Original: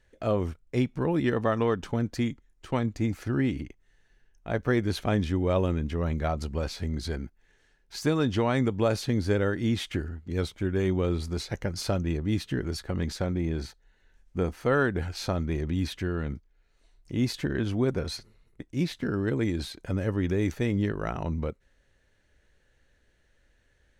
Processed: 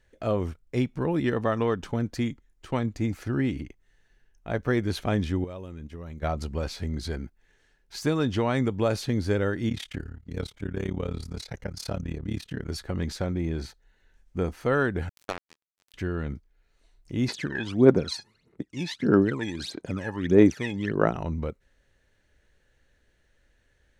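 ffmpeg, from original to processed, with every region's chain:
-filter_complex "[0:a]asettb=1/sr,asplit=3[a][b][c];[a]atrim=end=5.444[d];[b]atrim=start=5.44:end=6.23,asetpts=PTS-STARTPTS,afade=t=in:d=0.004:c=qsin,afade=t=out:st=0.786:d=0.004:c=qsin,agate=range=-12dB:threshold=-31dB:ratio=16:release=100:detection=peak,highshelf=f=5.7k:g=7,acompressor=threshold=-36dB:ratio=5:attack=3.2:release=140:knee=1:detection=peak[e];[c]atrim=start=6.226[f];[d][e]acrossfade=d=0.004:c1=hsin:c2=qsin[g];[g][f]acrossfade=d=0.004:c1=qsin:c2=hsin,asettb=1/sr,asplit=3[h][i][j];[h]atrim=end=9.694[k];[i]atrim=start=9.69:end=12.7,asetpts=PTS-STARTPTS,afade=t=in:d=0.004:c=qsin,afade=t=out:st=3.006:d=0.004:c=qsin,bandreject=f=350:w=6.3,tremolo=f=35:d=0.919[l];[j]atrim=start=12.696[m];[k][l]acrossfade=d=0.004:c1=hsin:c2=qsin[n];[n][m]acrossfade=d=0.004:c1=qsin:c2=hsin,asettb=1/sr,asplit=3[o][p][q];[o]atrim=end=15.094[r];[p]atrim=start=15.09:end=15.94,asetpts=PTS-STARTPTS,afade=t=in:d=0.004:c=qsin,afade=t=out:st=0.846:d=0.004:c=qsin,highpass=410,acrusher=bits=3:mix=0:aa=0.5[s];[q]atrim=start=15.936[t];[r][s]acrossfade=d=0.004:c1=hsin:c2=qsin[u];[u][t]acrossfade=d=0.004:c1=qsin:c2=hsin,asettb=1/sr,asplit=3[v][w][x];[v]atrim=end=17.284[y];[w]atrim=start=17.28:end=21.15,asetpts=PTS-STARTPTS,afade=t=in:d=0.004:c=qsin,afade=t=out:st=3.866:d=0.004:c=qsin,aphaser=in_gain=1:out_gain=1:delay=1.2:decay=0.79:speed=1.6:type=sinusoidal,highpass=200,lowpass=8k[z];[x]atrim=start=21.146[aa];[y][z]acrossfade=d=0.004:c1=hsin:c2=qsin[ab];[ab][aa]acrossfade=d=0.004:c1=qsin:c2=hsin"

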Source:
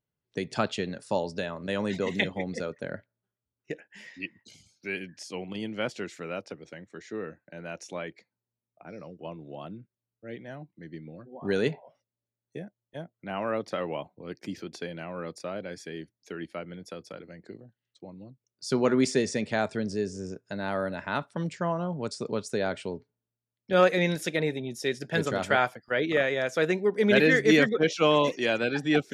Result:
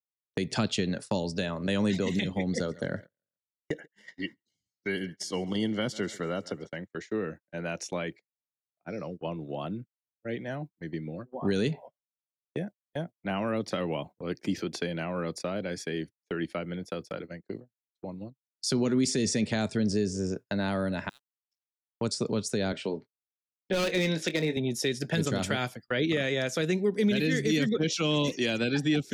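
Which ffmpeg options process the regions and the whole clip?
-filter_complex "[0:a]asettb=1/sr,asplit=3[a][b][c];[a]atrim=end=2.474[d];[b]atrim=start=2.47:end=6.76,asetpts=PTS-STARTPTS,afade=t=in:d=0.004:c=qsin,afade=t=out:st=4.286:d=0.004:c=qsin,asuperstop=centerf=2500:order=20:qfactor=5.4,aecho=1:1:138|276|414:0.0708|0.0333|0.0156,atrim=end_sample=189189[e];[c]atrim=start=6.756[f];[d][e]acrossfade=d=0.004:c1=hsin:c2=qsin[g];[g][f]acrossfade=d=0.004:c1=qsin:c2=hsin,asettb=1/sr,asplit=3[h][i][j];[h]atrim=end=21.094[k];[i]atrim=start=21.09:end=22.01,asetpts=PTS-STARTPTS,afade=t=in:d=0.004:c=qsin,afade=t=out:st=0.916:d=0.004:c=qsin,bandpass=f=5.4k:t=q:w=15,aeval=exprs='val(0)*gte(abs(val(0)),0.00126)':c=same[l];[j]atrim=start=22.006[m];[k][l]acrossfade=d=0.004:c1=hsin:c2=qsin[n];[n][m]acrossfade=d=0.004:c1=qsin:c2=hsin,asettb=1/sr,asplit=3[o][p][q];[o]atrim=end=22.724[r];[p]atrim=start=22.72:end=24.57,asetpts=PTS-STARTPTS,afade=t=in:d=0.004:c=qsin,afade=t=out:st=1.846:d=0.004:c=qsin,highpass=210,lowpass=5k,asoftclip=type=hard:threshold=-20.5dB,asplit=2[s][t];[t]adelay=25,volume=-11.5dB[u];[s][u]amix=inputs=2:normalize=0,atrim=end_sample=81585[v];[q]atrim=start=24.566[w];[r][v]acrossfade=d=0.004:c1=hsin:c2=qsin[x];[x][w]acrossfade=d=0.004:c1=qsin:c2=hsin,agate=range=-35dB:threshold=-45dB:ratio=16:detection=peak,acrossover=split=310|3000[y][z][aa];[z]acompressor=threshold=-38dB:ratio=6[ab];[y][ab][aa]amix=inputs=3:normalize=0,alimiter=limit=-24dB:level=0:latency=1:release=99,volume=6.5dB"

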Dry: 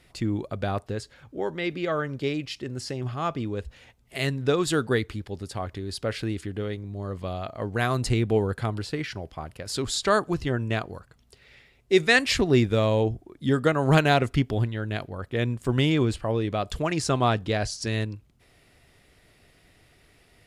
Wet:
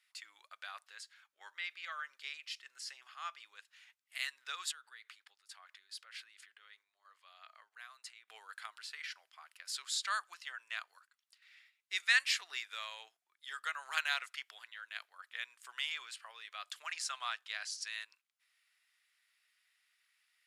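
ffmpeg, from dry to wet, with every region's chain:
-filter_complex "[0:a]asettb=1/sr,asplit=3[a][b][c];[a]atrim=end=4.714[d];[b]atrim=start=4.71:end=8.28,asetpts=PTS-STARTPTS,afade=t=in:d=0.004:c=qsin,afade=t=out:st=3.566:d=0.004:c=qsin,highshelf=f=4.4k:g=-5,acompressor=threshold=-32dB:ratio=12:attack=3.2:release=140:knee=1:detection=peak[e];[c]atrim=start=8.276[f];[d][e]acrossfade=d=0.004:c1=hsin:c2=qsin[g];[g][f]acrossfade=d=0.004:c1=qsin:c2=hsin,highpass=f=1.3k:w=0.5412,highpass=f=1.3k:w=1.3066,agate=range=-6dB:threshold=-58dB:ratio=16:detection=peak,volume=-7.5dB"

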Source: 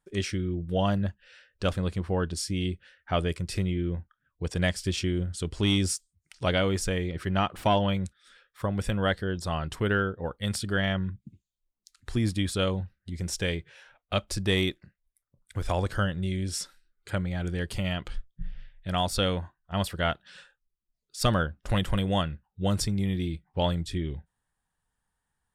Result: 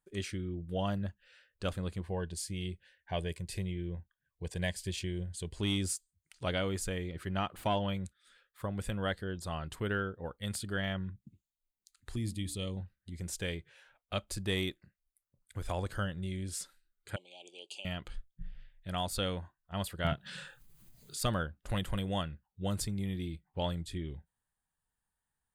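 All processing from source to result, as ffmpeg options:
-filter_complex "[0:a]asettb=1/sr,asplit=3[a][b][c];[a]atrim=end=2.024[d];[b]atrim=start=2.02:end=5.56,asetpts=PTS-STARTPTS,afade=t=in:d=0.004:c=qsin,afade=t=out:st=3.536:d=0.004:c=qsin,asuperstop=centerf=1300:order=4:qfactor=3.5,equalizer=f=270:w=4.4:g=-9[e];[c]atrim=start=5.556[f];[d][e]acrossfade=d=0.004:c1=hsin:c2=qsin[g];[g][f]acrossfade=d=0.004:c1=qsin:c2=hsin,asettb=1/sr,asplit=3[h][i][j];[h]atrim=end=12.164[k];[i]atrim=start=12.16:end=12.77,asetpts=PTS-STARTPTS,afade=t=in:d=0.004:c=qsin,afade=t=out:st=0.606:d=0.004:c=qsin,asuperstop=centerf=1500:order=8:qfactor=4.2,equalizer=f=1k:w=0.58:g=-11,bandreject=f=72.23:t=h:w=4,bandreject=f=144.46:t=h:w=4,bandreject=f=216.69:t=h:w=4,bandreject=f=288.92:t=h:w=4,bandreject=f=361.15:t=h:w=4,bandreject=f=433.38:t=h:w=4,bandreject=f=505.61:t=h:w=4,bandreject=f=577.84:t=h:w=4,bandreject=f=650.07:t=h:w=4,bandreject=f=722.3:t=h:w=4[l];[j]atrim=start=12.766[m];[k][l]acrossfade=d=0.004:c1=hsin:c2=qsin[n];[n][m]acrossfade=d=0.004:c1=qsin:c2=hsin,asettb=1/sr,asplit=3[o][p][q];[o]atrim=end=17.164[r];[p]atrim=start=17.16:end=17.85,asetpts=PTS-STARTPTS,afade=t=in:d=0.004:c=qsin,afade=t=out:st=0.686:d=0.004:c=qsin,asuperstop=centerf=1500:order=12:qfactor=1,highpass=f=470:w=0.5412,highpass=f=470:w=1.3066,equalizer=f=490:t=q:w=4:g=-9,equalizer=f=690:t=q:w=4:g=-6,equalizer=f=980:t=q:w=4:g=-5,equalizer=f=2k:t=q:w=4:g=-7,equalizer=f=2.8k:t=q:w=4:g=8,equalizer=f=6.3k:t=q:w=4:g=3,lowpass=f=8.4k:w=0.5412,lowpass=f=8.4k:w=1.3066[s];[q]atrim=start=17.846[t];[r][s]acrossfade=d=0.004:c1=hsin:c2=qsin[u];[u][t]acrossfade=d=0.004:c1=qsin:c2=hsin,asettb=1/sr,asplit=3[v][w][x];[v]atrim=end=20.044[y];[w]atrim=start=20.04:end=21.21,asetpts=PTS-STARTPTS,afade=t=in:d=0.004:c=qsin,afade=t=out:st=1.166:d=0.004:c=qsin,equalizer=f=140:t=o:w=1.3:g=13.5,acompressor=mode=upward:threshold=-26dB:ratio=2.5:attack=3.2:release=140:knee=2.83:detection=peak,asplit=2[z][aa];[aa]adelay=27,volume=-7dB[ab];[z][ab]amix=inputs=2:normalize=0,atrim=end_sample=51597[ac];[x]atrim=start=21.206[ad];[y][ac]acrossfade=d=0.004:c1=hsin:c2=qsin[ae];[ae][ad]acrossfade=d=0.004:c1=qsin:c2=hsin,highshelf=f=8.9k:g=8,bandreject=f=5.5k:w=7.5,volume=-8dB"

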